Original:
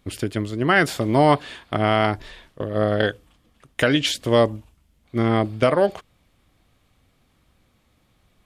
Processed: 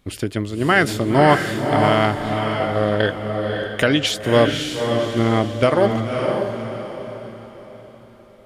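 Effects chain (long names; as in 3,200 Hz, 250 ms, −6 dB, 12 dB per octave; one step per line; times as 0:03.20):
feedback delay with all-pass diffusion 558 ms, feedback 41%, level −4 dB
level +1.5 dB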